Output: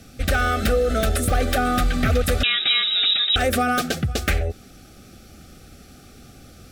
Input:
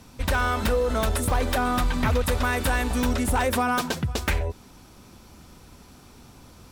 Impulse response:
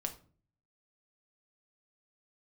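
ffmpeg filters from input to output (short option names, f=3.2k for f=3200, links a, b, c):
-filter_complex "[0:a]asettb=1/sr,asplit=3[a][b][c];[a]atrim=end=2.434[d];[b]atrim=start=2.43:end=3.36,asetpts=PTS-STARTPTS,afade=t=in:d=0.004:c=qsin,afade=t=out:st=0.926:d=0.004:c=qsin,lowpass=f=3.3k:t=q:w=0.5098,lowpass=f=3.3k:t=q:w=0.6013,lowpass=f=3.3k:t=q:w=0.9,lowpass=f=3.3k:t=q:w=2.563,afreqshift=-3900[e];[c]atrim=start=3.356[f];[d][e]acrossfade=d=0.004:c1=hsin:c2=qsin[g];[g][f]acrossfade=d=0.004:c1=qsin:c2=hsin,asuperstop=centerf=970:order=20:qfactor=3.1,volume=3.5dB"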